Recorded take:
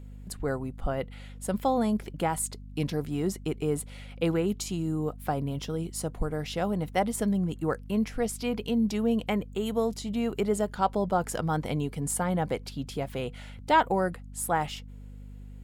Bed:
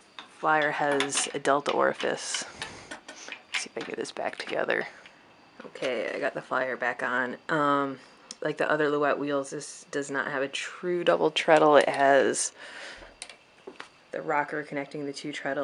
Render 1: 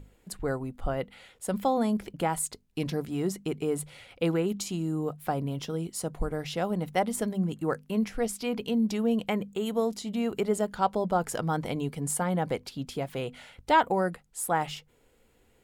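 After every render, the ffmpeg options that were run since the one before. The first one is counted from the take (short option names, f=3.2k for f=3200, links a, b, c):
-af "bandreject=f=50:t=h:w=6,bandreject=f=100:t=h:w=6,bandreject=f=150:t=h:w=6,bandreject=f=200:t=h:w=6,bandreject=f=250:t=h:w=6"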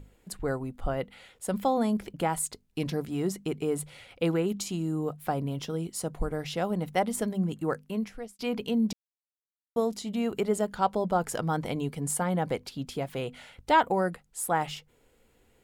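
-filter_complex "[0:a]asplit=4[a][b][c][d];[a]atrim=end=8.39,asetpts=PTS-STARTPTS,afade=t=out:st=7.5:d=0.89:c=qsin[e];[b]atrim=start=8.39:end=8.93,asetpts=PTS-STARTPTS,afade=t=in:d=0.004:c=hsin,afade=t=out:st=0.536:d=0.004:c=hsin[f];[c]atrim=start=8.93:end=9.76,asetpts=PTS-STARTPTS,volume=0[g];[d]atrim=start=9.76,asetpts=PTS-STARTPTS,afade=t=in:d=0.004:c=hsin[h];[e][f][g][h]concat=n=4:v=0:a=1"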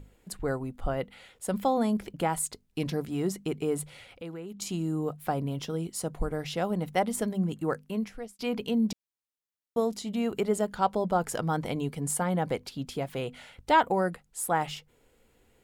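-filter_complex "[0:a]asettb=1/sr,asplit=3[a][b][c];[a]atrim=end=4.084[d];[b]atrim=start=4.08:end=4.62,asetpts=PTS-STARTPTS,afade=t=in:d=0.004:c=qsin,afade=t=out:st=0.536:d=0.004:c=qsin,acompressor=threshold=-47dB:ratio=2:attack=3.2:release=140:knee=1:detection=peak[e];[c]atrim=start=4.616[f];[d][e]acrossfade=d=0.004:c1=hsin:c2=qsin[g];[g][f]acrossfade=d=0.004:c1=qsin:c2=hsin"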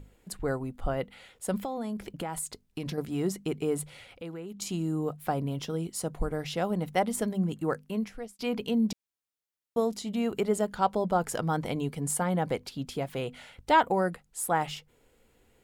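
-filter_complex "[0:a]asettb=1/sr,asplit=3[a][b][c];[a]atrim=end=1.584[d];[b]atrim=start=1.58:end=2.98,asetpts=PTS-STARTPTS,afade=t=in:d=0.004:c=qsin,afade=t=out:st=1.396:d=0.004:c=qsin,acompressor=threshold=-30dB:ratio=6:attack=3.2:release=140:knee=1:detection=peak[e];[c]atrim=start=2.976[f];[d][e]acrossfade=d=0.004:c1=hsin:c2=qsin[g];[g][f]acrossfade=d=0.004:c1=qsin:c2=hsin"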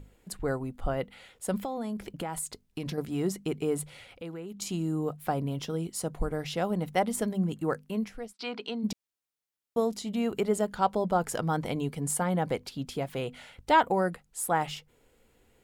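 -filter_complex "[0:a]asplit=3[a][b][c];[a]afade=t=out:st=8.32:d=0.02[d];[b]highpass=380,equalizer=f=520:t=q:w=4:g=-7,equalizer=f=1.4k:t=q:w=4:g=5,equalizer=f=4.1k:t=q:w=4:g=5,equalizer=f=6.8k:t=q:w=4:g=-9,lowpass=f=7.1k:w=0.5412,lowpass=f=7.1k:w=1.3066,afade=t=in:st=8.32:d=0.02,afade=t=out:st=8.83:d=0.02[e];[c]afade=t=in:st=8.83:d=0.02[f];[d][e][f]amix=inputs=3:normalize=0"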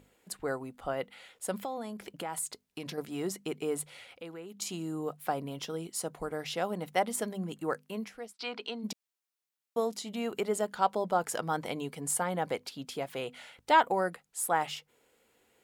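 -af "highpass=f=460:p=1"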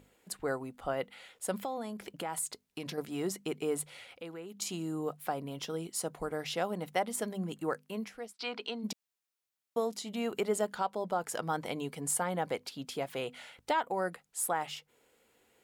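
-af "alimiter=limit=-20dB:level=0:latency=1:release=424"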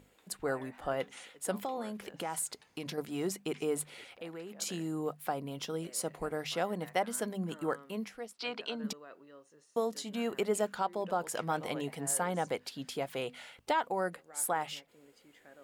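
-filter_complex "[1:a]volume=-26.5dB[a];[0:a][a]amix=inputs=2:normalize=0"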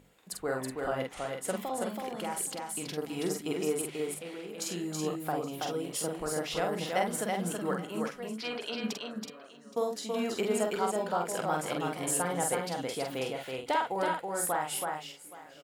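-filter_complex "[0:a]asplit=2[a][b];[b]adelay=46,volume=-4dB[c];[a][c]amix=inputs=2:normalize=0,aecho=1:1:327|821:0.668|0.126"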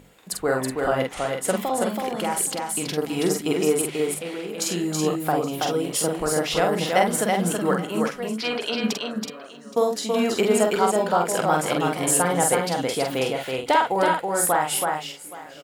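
-af "volume=10dB"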